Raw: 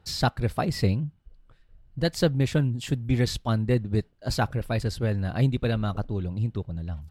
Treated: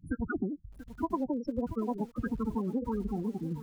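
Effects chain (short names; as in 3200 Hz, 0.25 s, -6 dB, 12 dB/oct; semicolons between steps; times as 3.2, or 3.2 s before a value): wide varispeed 1.96×; LPF 2600 Hz 6 dB/oct; low shelf 100 Hz +9 dB; loudest bins only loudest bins 8; compressor 12:1, threshold -25 dBFS, peak gain reduction 9 dB; low shelf 440 Hz -4.5 dB; lo-fi delay 0.685 s, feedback 35%, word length 8-bit, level -13.5 dB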